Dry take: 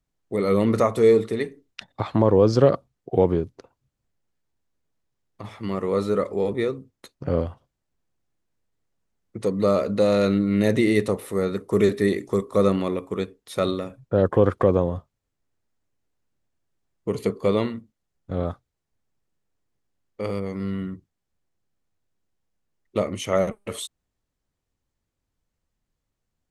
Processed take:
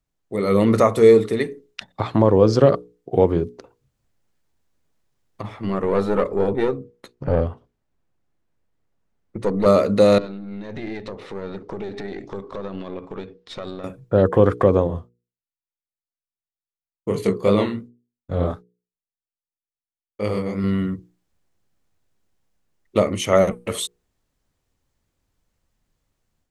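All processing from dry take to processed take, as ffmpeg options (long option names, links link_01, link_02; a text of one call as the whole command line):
ffmpeg -i in.wav -filter_complex "[0:a]asettb=1/sr,asplit=3[link_01][link_02][link_03];[link_01]atrim=end=5.424[link_04];[link_02]atrim=start=5.42:end=9.66,asetpts=PTS-STARTPTS,afade=type=in:duration=0.004:curve=qsin,afade=type=out:start_time=4.236:duration=0.004:curve=qsin,highshelf=frequency=3800:gain=-11,aeval=exprs='(tanh(7.94*val(0)+0.5)-tanh(0.5))/7.94':channel_layout=same[link_05];[link_03]atrim=start=9.656[link_06];[link_04][link_05]acrossfade=duration=0.004:curve1=hsin:curve2=qsin[link_07];[link_07][link_06]acrossfade=duration=0.004:curve1=qsin:curve2=hsin,asettb=1/sr,asplit=3[link_08][link_09][link_10];[link_08]atrim=end=10.184[link_11];[link_09]atrim=start=10.18:end=13.84,asetpts=PTS-STARTPTS,afade=type=in:duration=0.004:curve=qsin,afade=type=out:start_time=3.656:duration=0.004:curve=qsin,lowpass=frequency=5000:width=0.5412,lowpass=frequency=5000:width=1.3066,acompressor=threshold=-30dB:ratio=8:attack=3.2:release=140:knee=1:detection=peak,aeval=exprs='(tanh(25.1*val(0)+0.65)-tanh(0.65))/25.1':channel_layout=same[link_12];[link_10]atrim=start=13.836[link_13];[link_11][link_12]acrossfade=duration=0.004:curve1=hsin:curve2=qsin[link_14];[link_14][link_13]acrossfade=duration=0.004:curve1=qsin:curve2=hsin,asettb=1/sr,asplit=3[link_15][link_16][link_17];[link_15]atrim=end=14.874[link_18];[link_16]atrim=start=14.87:end=20.64,asetpts=PTS-STARTPTS,afade=type=in:duration=0.004:curve=qsin,afade=type=out:start_time=5.766:duration=0.004:curve=qsin,agate=range=-33dB:threshold=-50dB:ratio=3:release=100:detection=peak,flanger=delay=19.5:depth=7.8:speed=2.6[link_19];[link_17]atrim=start=20.636[link_20];[link_18][link_19]acrossfade=duration=0.004:curve1=hsin:curve2=qsin[link_21];[link_21][link_20]acrossfade=duration=0.004:curve1=qsin:curve2=hsin,dynaudnorm=framelen=330:gausssize=3:maxgain=7.5dB,bandreject=frequency=60:width_type=h:width=6,bandreject=frequency=120:width_type=h:width=6,bandreject=frequency=180:width_type=h:width=6,bandreject=frequency=240:width_type=h:width=6,bandreject=frequency=300:width_type=h:width=6,bandreject=frequency=360:width_type=h:width=6,bandreject=frequency=420:width_type=h:width=6,bandreject=frequency=480:width_type=h:width=6" out.wav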